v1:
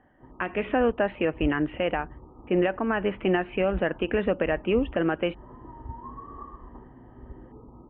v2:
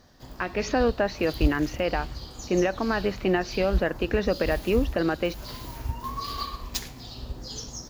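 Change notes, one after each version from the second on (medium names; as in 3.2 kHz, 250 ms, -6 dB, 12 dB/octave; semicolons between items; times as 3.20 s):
background: remove rippled Chebyshev low-pass 1.3 kHz, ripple 9 dB; master: remove steep low-pass 3.3 kHz 96 dB/octave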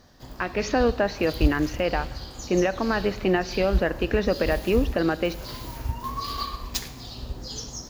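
reverb: on, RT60 1.7 s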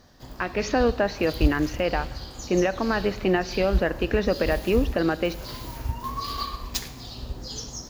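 no change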